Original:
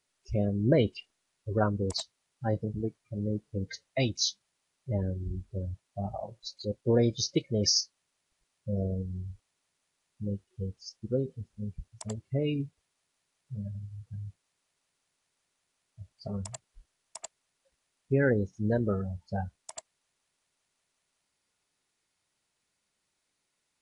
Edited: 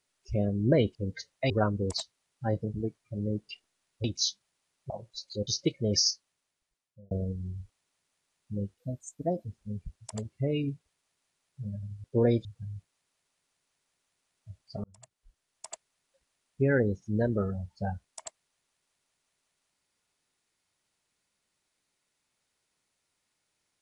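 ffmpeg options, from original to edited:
-filter_complex "[0:a]asplit=13[s0][s1][s2][s3][s4][s5][s6][s7][s8][s9][s10][s11][s12];[s0]atrim=end=0.952[s13];[s1]atrim=start=3.488:end=4.042[s14];[s2]atrim=start=1.498:end=3.492[s15];[s3]atrim=start=0.948:end=1.502[s16];[s4]atrim=start=4.038:end=4.902[s17];[s5]atrim=start=6.188:end=6.762[s18];[s6]atrim=start=7.168:end=8.81,asetpts=PTS-STARTPTS,afade=t=out:st=0.642:d=1[s19];[s7]atrim=start=8.81:end=10.484,asetpts=PTS-STARTPTS,afade=t=in:d=0.004:c=hsin[s20];[s8]atrim=start=10.48:end=11.37,asetpts=PTS-STARTPTS,asetrate=58653,aresample=44100[s21];[s9]atrim=start=11.366:end=13.962[s22];[s10]atrim=start=6.758:end=7.172[s23];[s11]atrim=start=13.958:end=16.35,asetpts=PTS-STARTPTS,afade=t=out:st=2.388:d=0.004:c=hsin[s24];[s12]atrim=start=16.35,asetpts=PTS-STARTPTS,afade=t=in:d=0.85[s25];[s13][s14]acrossfade=d=0.004:c1=hsin:c2=hsin[s26];[s26][s15]acrossfade=d=0.004:c1=hsin:c2=hsin[s27];[s27][s16]acrossfade=d=0.004:c1=hsin:c2=hsin[s28];[s28][s17]acrossfade=d=0.004:c1=hsin:c2=hsin[s29];[s29][s18]acrossfade=d=0.004:c1=hsin:c2=hsin[s30];[s19][s20]concat=n=2:v=0:a=1[s31];[s30][s31]acrossfade=d=0.004:c1=hsin:c2=hsin[s32];[s32][s21]acrossfade=d=0.004:c1=hsin:c2=hsin[s33];[s33][s22]acrossfade=d=0.004:c1=hsin:c2=hsin[s34];[s34][s23]acrossfade=d=0.004:c1=hsin:c2=hsin[s35];[s24][s25]concat=n=2:v=0:a=1[s36];[s35][s36]acrossfade=d=0.004:c1=hsin:c2=hsin"

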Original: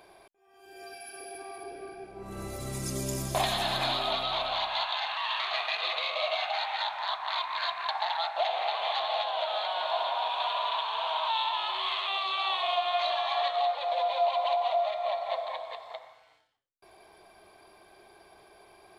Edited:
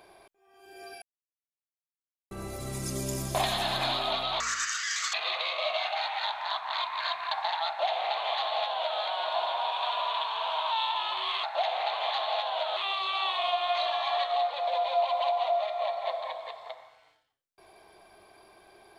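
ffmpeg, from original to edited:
-filter_complex "[0:a]asplit=7[s0][s1][s2][s3][s4][s5][s6];[s0]atrim=end=1.02,asetpts=PTS-STARTPTS,afade=t=out:st=1.016:d=0.004:c=hsin[s7];[s1]atrim=start=1.02:end=2.31,asetpts=PTS-STARTPTS,volume=0[s8];[s2]atrim=start=2.31:end=4.404,asetpts=PTS-STARTPTS,afade=t=in:d=0.004:c=hsin[s9];[s3]atrim=start=4.4:end=5.71,asetpts=PTS-STARTPTS,asetrate=78498,aresample=44100[s10];[s4]atrim=start=5.706:end=12.012[s11];[s5]atrim=start=8.248:end=9.582[s12];[s6]atrim=start=12.008[s13];[s7][s8][s9]concat=n=3:v=0:a=1[s14];[s14][s10]acrossfade=d=0.004:c1=hsin:c2=hsin[s15];[s15][s11]acrossfade=d=0.004:c1=hsin:c2=hsin[s16];[s16][s12]acrossfade=d=0.004:c1=hsin:c2=hsin[s17];[s17][s13]acrossfade=d=0.004:c1=hsin:c2=hsin"

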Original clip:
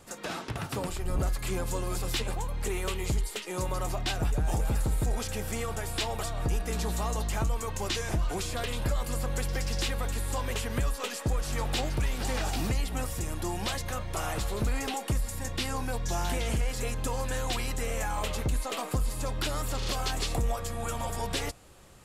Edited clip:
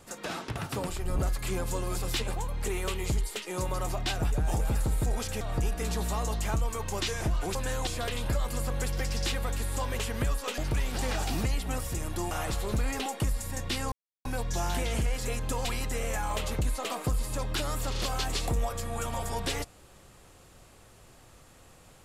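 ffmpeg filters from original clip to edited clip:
-filter_complex "[0:a]asplit=8[s0][s1][s2][s3][s4][s5][s6][s7];[s0]atrim=end=5.412[s8];[s1]atrim=start=6.288:end=8.432[s9];[s2]atrim=start=17.198:end=17.522[s10];[s3]atrim=start=8.428:end=11.142[s11];[s4]atrim=start=11.838:end=13.572[s12];[s5]atrim=start=14.188:end=15.8,asetpts=PTS-STARTPTS,afade=t=out:st=1.608:d=0.004:c=hsin,apad=pad_dur=0.33[s13];[s6]atrim=start=15.8:end=17.202,asetpts=PTS-STARTPTS,afade=t=in:d=0.004:c=hsin[s14];[s7]atrim=start=17.518[s15];[s8][s9]acrossfade=d=0.004:c1=hsin:c2=hsin[s16];[s16][s10]acrossfade=d=0.004:c1=hsin:c2=hsin[s17];[s17][s11]acrossfade=d=0.004:c1=hsin:c2=hsin[s18];[s18][s12]acrossfade=d=0.004:c1=hsin:c2=hsin[s19];[s13][s14]concat=n=2:v=0:a=1[s20];[s19][s20]acrossfade=d=0.004:c1=hsin:c2=hsin[s21];[s21][s15]acrossfade=d=0.004:c1=hsin:c2=hsin"

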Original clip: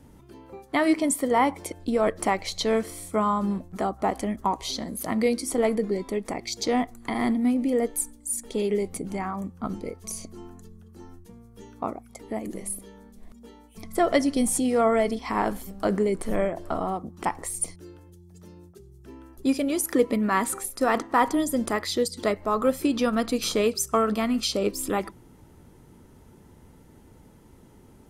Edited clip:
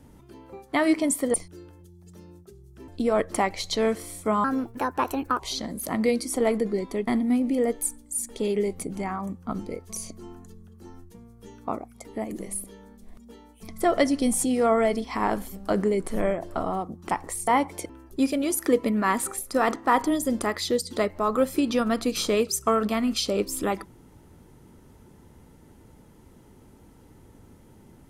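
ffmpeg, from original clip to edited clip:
-filter_complex "[0:a]asplit=8[s0][s1][s2][s3][s4][s5][s6][s7];[s0]atrim=end=1.342[s8];[s1]atrim=start=17.618:end=19.162[s9];[s2]atrim=start=1.758:end=3.324[s10];[s3]atrim=start=3.32:end=4.57,asetpts=PTS-STARTPTS,asetrate=57771,aresample=44100,atrim=end_sample=42080,asetpts=PTS-STARTPTS[s11];[s4]atrim=start=4.566:end=6.252[s12];[s5]atrim=start=7.218:end=17.622[s13];[s6]atrim=start=1.338:end=1.762[s14];[s7]atrim=start=19.158[s15];[s8][s9]acrossfade=d=0.004:c1=hsin:c2=hsin[s16];[s16][s10]acrossfade=d=0.004:c1=hsin:c2=hsin[s17];[s17][s11]acrossfade=d=0.004:c1=hsin:c2=hsin[s18];[s18][s12]acrossfade=d=0.004:c1=hsin:c2=hsin[s19];[s19][s13]acrossfade=d=0.004:c1=hsin:c2=hsin[s20];[s20][s14]acrossfade=d=0.004:c1=hsin:c2=hsin[s21];[s21][s15]acrossfade=d=0.004:c1=hsin:c2=hsin"

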